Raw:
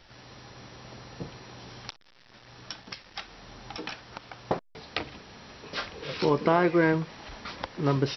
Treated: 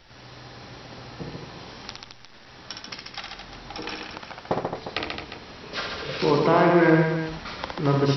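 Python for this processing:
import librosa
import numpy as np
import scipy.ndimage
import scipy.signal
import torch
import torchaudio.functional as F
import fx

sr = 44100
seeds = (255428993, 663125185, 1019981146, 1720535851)

y = fx.echo_multitap(x, sr, ms=(63, 137, 217, 355), db=(-4.0, -4.5, -7.5, -11.0))
y = y * librosa.db_to_amplitude(2.0)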